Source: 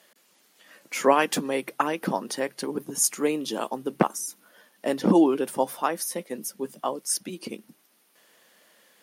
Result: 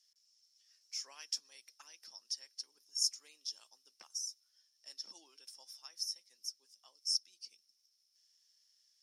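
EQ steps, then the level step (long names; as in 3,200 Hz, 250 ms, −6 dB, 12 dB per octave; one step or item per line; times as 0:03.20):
resonant band-pass 5,400 Hz, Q 16
spectral tilt +2 dB per octave
+1.0 dB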